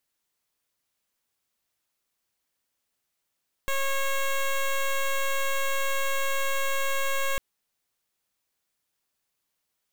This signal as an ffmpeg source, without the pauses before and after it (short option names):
-f lavfi -i "aevalsrc='0.0531*(2*lt(mod(546*t,1),0.11)-1)':d=3.7:s=44100"